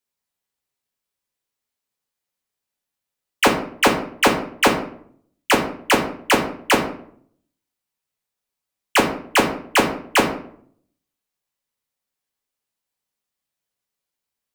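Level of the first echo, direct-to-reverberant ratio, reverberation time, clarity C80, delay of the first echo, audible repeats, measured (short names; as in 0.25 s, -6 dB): none, 0.0 dB, 0.60 s, 11.5 dB, none, none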